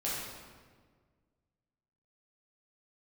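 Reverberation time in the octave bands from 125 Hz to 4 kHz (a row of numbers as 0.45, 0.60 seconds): 2.2, 2.0, 1.7, 1.5, 1.3, 1.1 seconds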